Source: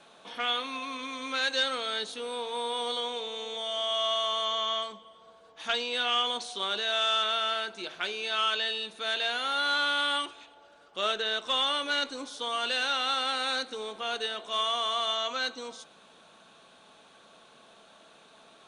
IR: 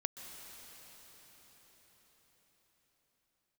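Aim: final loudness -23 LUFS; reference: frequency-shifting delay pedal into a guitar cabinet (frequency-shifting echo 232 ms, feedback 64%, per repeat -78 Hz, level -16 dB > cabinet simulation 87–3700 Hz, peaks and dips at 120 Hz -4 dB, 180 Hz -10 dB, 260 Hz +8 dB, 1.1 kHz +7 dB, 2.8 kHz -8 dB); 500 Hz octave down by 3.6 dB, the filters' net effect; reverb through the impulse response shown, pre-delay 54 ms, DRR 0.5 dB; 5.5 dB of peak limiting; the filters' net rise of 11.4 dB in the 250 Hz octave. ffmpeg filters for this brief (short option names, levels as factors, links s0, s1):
-filter_complex "[0:a]equalizer=f=250:t=o:g=8.5,equalizer=f=500:t=o:g=-7,alimiter=limit=0.075:level=0:latency=1,asplit=2[s0][s1];[1:a]atrim=start_sample=2205,adelay=54[s2];[s1][s2]afir=irnorm=-1:irlink=0,volume=0.944[s3];[s0][s3]amix=inputs=2:normalize=0,asplit=8[s4][s5][s6][s7][s8][s9][s10][s11];[s5]adelay=232,afreqshift=-78,volume=0.158[s12];[s6]adelay=464,afreqshift=-156,volume=0.101[s13];[s7]adelay=696,afreqshift=-234,volume=0.0646[s14];[s8]adelay=928,afreqshift=-312,volume=0.0417[s15];[s9]adelay=1160,afreqshift=-390,volume=0.0266[s16];[s10]adelay=1392,afreqshift=-468,volume=0.017[s17];[s11]adelay=1624,afreqshift=-546,volume=0.0108[s18];[s4][s12][s13][s14][s15][s16][s17][s18]amix=inputs=8:normalize=0,highpass=87,equalizer=f=120:t=q:w=4:g=-4,equalizer=f=180:t=q:w=4:g=-10,equalizer=f=260:t=q:w=4:g=8,equalizer=f=1100:t=q:w=4:g=7,equalizer=f=2800:t=q:w=4:g=-8,lowpass=f=3700:w=0.5412,lowpass=f=3700:w=1.3066,volume=1.88"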